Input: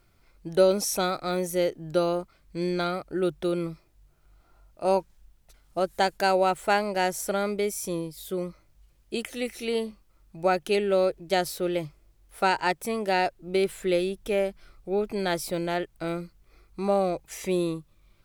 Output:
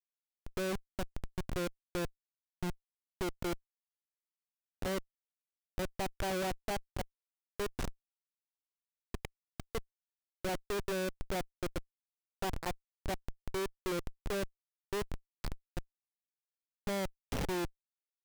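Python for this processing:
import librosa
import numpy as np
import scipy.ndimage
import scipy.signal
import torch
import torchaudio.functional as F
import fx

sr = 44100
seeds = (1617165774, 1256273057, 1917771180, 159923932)

y = fx.env_lowpass_down(x, sr, base_hz=1000.0, full_db=-20.0)
y = fx.peak_eq(y, sr, hz=810.0, db=-7.0, octaves=2.9)
y = fx.level_steps(y, sr, step_db=15)
y = fx.schmitt(y, sr, flips_db=-38.5)
y = y * librosa.db_to_amplitude(4.0)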